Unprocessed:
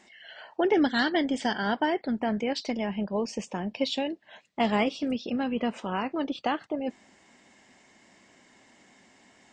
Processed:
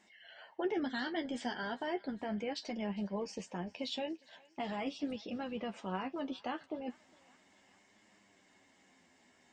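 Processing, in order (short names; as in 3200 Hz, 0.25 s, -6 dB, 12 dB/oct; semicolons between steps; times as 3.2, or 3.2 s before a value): limiter -18.5 dBFS, peak gain reduction 7 dB; flange 0.37 Hz, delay 9.5 ms, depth 3.1 ms, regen +27%; on a send: thinning echo 0.406 s, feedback 73%, high-pass 800 Hz, level -22 dB; on the sum: gain -5 dB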